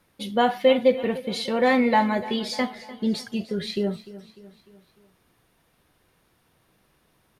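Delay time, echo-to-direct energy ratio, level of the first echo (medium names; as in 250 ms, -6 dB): 299 ms, -15.5 dB, -17.0 dB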